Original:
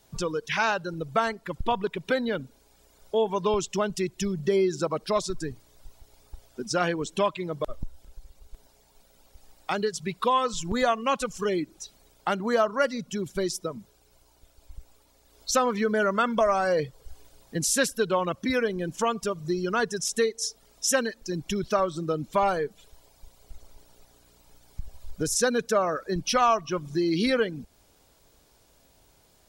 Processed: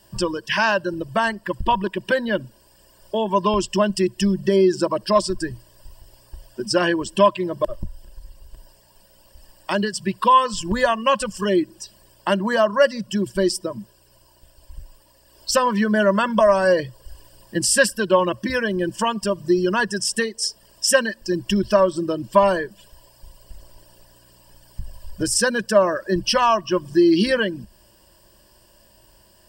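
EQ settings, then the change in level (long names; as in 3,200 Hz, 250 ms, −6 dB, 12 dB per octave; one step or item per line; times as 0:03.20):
EQ curve with evenly spaced ripples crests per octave 1.3, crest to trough 13 dB
+4.5 dB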